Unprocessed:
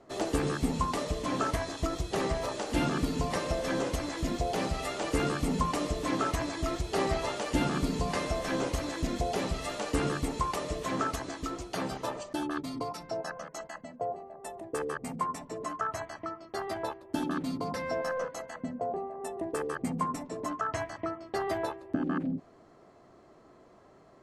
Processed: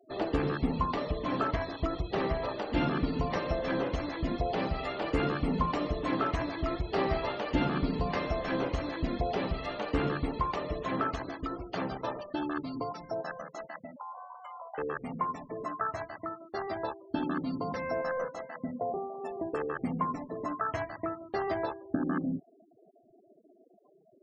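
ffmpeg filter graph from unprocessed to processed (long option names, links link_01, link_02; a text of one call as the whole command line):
ffmpeg -i in.wav -filter_complex "[0:a]asettb=1/sr,asplit=3[link_01][link_02][link_03];[link_01]atrim=end=13.964[link_04];[link_02]atrim=start=13.96:end=14.78,asetpts=PTS-STARTPTS,afade=type=in:duration=0.004:curve=qsin,afade=type=out:start_time=0.816:duration=0.004:curve=qsin,highpass=frequency=140:width=0.5412,highpass=frequency=140:width=1.3066,afreqshift=340,acompressor=threshold=-39dB:ratio=5:attack=3.2:release=140:knee=1:detection=peak[link_05];[link_03]atrim=start=14.776[link_06];[link_04][link_05]acrossfade=duration=0.004:curve1=hsin:curve2=qsin[link_07];[link_07][link_06]acrossfade=duration=0.004:curve1=qsin:curve2=hsin,lowpass=4100,afftfilt=real='re*gte(hypot(re,im),0.00631)':imag='im*gte(hypot(re,im),0.00631)':win_size=1024:overlap=0.75" out.wav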